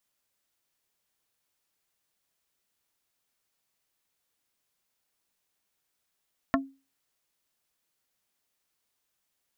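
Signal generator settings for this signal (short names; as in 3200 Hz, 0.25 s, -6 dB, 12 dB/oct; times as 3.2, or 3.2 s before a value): wood hit plate, lowest mode 271 Hz, decay 0.31 s, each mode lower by 0.5 dB, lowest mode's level -20 dB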